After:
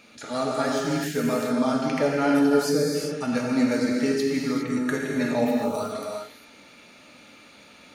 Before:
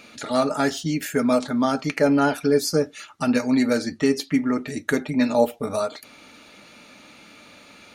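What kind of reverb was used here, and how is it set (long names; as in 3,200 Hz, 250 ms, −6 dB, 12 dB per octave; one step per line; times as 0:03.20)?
reverb whose tail is shaped and stops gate 430 ms flat, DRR −2.5 dB
level −6.5 dB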